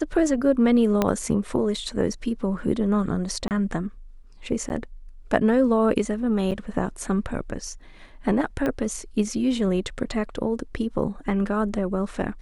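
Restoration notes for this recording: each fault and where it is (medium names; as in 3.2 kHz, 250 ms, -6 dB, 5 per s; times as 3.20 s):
1.02 s: pop -7 dBFS
3.48–3.51 s: dropout 28 ms
4.69–4.70 s: dropout 9.6 ms
6.51–6.52 s: dropout 7 ms
8.66 s: pop -14 dBFS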